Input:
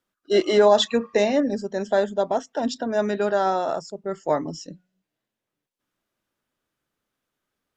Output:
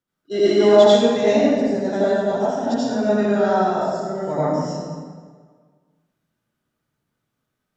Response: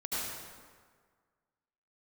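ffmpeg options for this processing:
-filter_complex "[0:a]equalizer=f=130:t=o:w=1.4:g=10.5[a];[1:a]atrim=start_sample=2205[b];[a][b]afir=irnorm=-1:irlink=0,volume=-3.5dB"

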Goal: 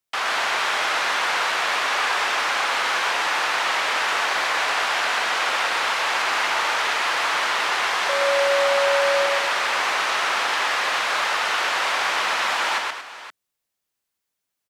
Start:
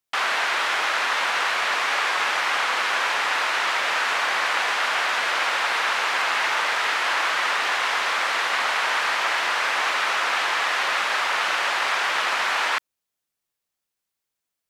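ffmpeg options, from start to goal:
-filter_complex "[0:a]asettb=1/sr,asplit=3[a][b][c];[a]atrim=end=8.094[d];[b]atrim=start=8.09:end=9.26,asetpts=PTS-STARTPTS,afade=t=in:d=0.004:c=qsin,afade=t=out:st=1.166:d=0.004:c=qsin,aeval=exprs='val(0)+0.0708*sin(2*PI*560*n/s)':c=same[e];[c]atrim=start=9.256[f];[d][e]acrossfade=d=0.004:c1=hsin:c2=qsin[g];[g][f]acrossfade=d=0.004:c1=qsin:c2=hsin,acrossover=split=200|1300|2700[h][i][j][k];[j]asoftclip=type=tanh:threshold=-28.5dB[l];[h][i][l][k]amix=inputs=4:normalize=0,aecho=1:1:123|230|519:0.708|0.299|0.2"

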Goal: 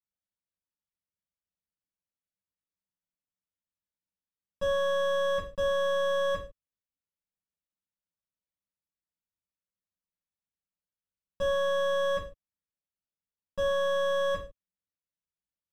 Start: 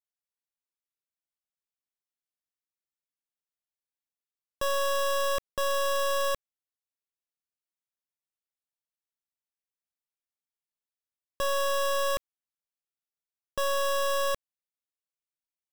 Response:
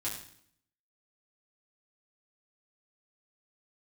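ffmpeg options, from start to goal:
-filter_complex "[0:a]aemphasis=mode=reproduction:type=bsi[a];[1:a]atrim=start_sample=2205,afade=t=out:st=0.35:d=0.01,atrim=end_sample=15876,asetrate=79380,aresample=44100[b];[a][b]afir=irnorm=-1:irlink=0,volume=-2dB"

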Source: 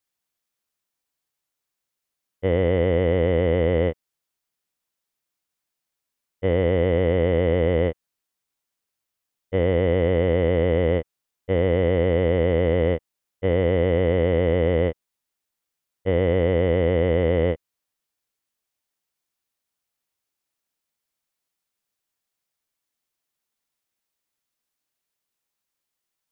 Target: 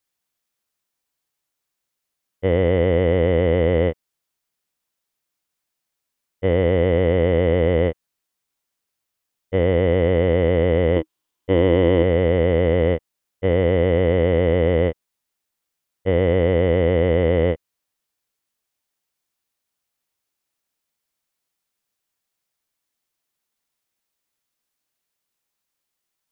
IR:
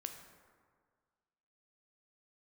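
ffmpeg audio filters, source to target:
-filter_complex "[0:a]asettb=1/sr,asplit=3[a][b][c];[a]atrim=end=10.964[d];[b]atrim=start=10.96:end=12.03,asetpts=PTS-STARTPTS,afade=t=in:d=0.004:c=qsin,afade=t=out:st=1.066:d=0.004:c=qsin,equalizer=f=315:t=o:w=0.33:g=11,equalizer=f=1k:t=o:w=0.33:g=7,equalizer=f=3.15k:t=o:w=0.33:g=5[e];[c]atrim=start=12.026[f];[d][e]acrossfade=d=0.004:c1=hsin:c2=qsin[g];[g][f]acrossfade=d=0.004:c1=qsin:c2=hsin,volume=2.5dB"

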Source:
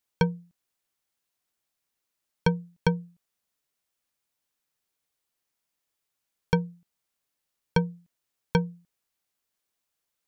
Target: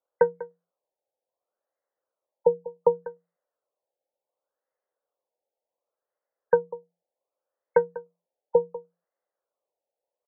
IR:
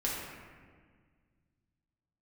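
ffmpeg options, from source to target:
-filter_complex "[0:a]highpass=f=530:t=q:w=4.9,adynamicsmooth=sensitivity=2:basefreq=2.3k,asplit=2[a][b];[b]aecho=0:1:195:0.141[c];[a][c]amix=inputs=2:normalize=0,afftfilt=real='re*lt(b*sr/1024,900*pow(2200/900,0.5+0.5*sin(2*PI*0.68*pts/sr)))':imag='im*lt(b*sr/1024,900*pow(2200/900,0.5+0.5*sin(2*PI*0.68*pts/sr)))':win_size=1024:overlap=0.75"

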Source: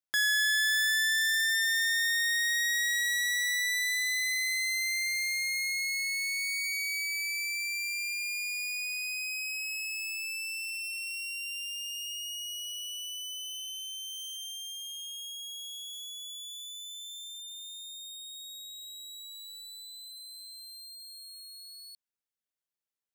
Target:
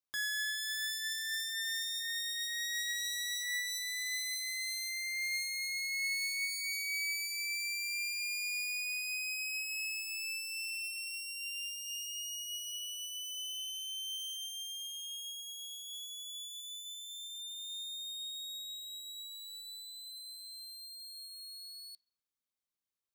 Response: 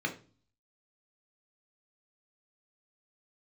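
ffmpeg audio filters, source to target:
-filter_complex "[0:a]asettb=1/sr,asplit=3[a][b][c];[a]atrim=end=17.594[d];[b]atrim=start=17.59:end=18.71,asetpts=PTS-STARTPTS,afade=t=in:d=0.004:c=qsin,afade=t=out:st=1.116:d=0.004:c=qsin,highpass=f=1.4k:t=q:w=3[e];[c]atrim=start=18.706[f];[d][e]acrossfade=d=0.004:c1=hsin:c2=qsin[g];[g][f]acrossfade=d=0.004:c1=qsin:c2=hsin,asplit=2[h][i];[i]highshelf=f=11k:g=-11[j];[1:a]atrim=start_sample=2205,asetrate=37044,aresample=44100[k];[j][k]afir=irnorm=-1:irlink=0,volume=-12dB[l];[h][l]amix=inputs=2:normalize=0,alimiter=level_in=4.5dB:limit=-24dB:level=0:latency=1,volume=-4.5dB,volume=-1.5dB"

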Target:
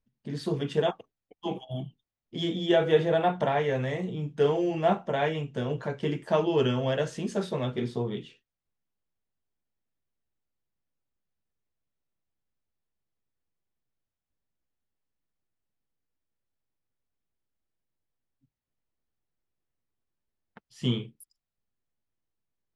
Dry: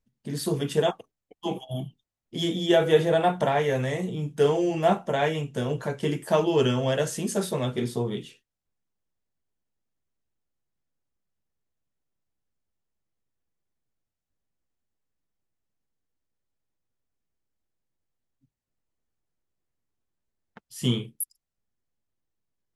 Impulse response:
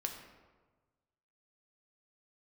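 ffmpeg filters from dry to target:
-af "lowpass=4.3k,volume=-2.5dB"

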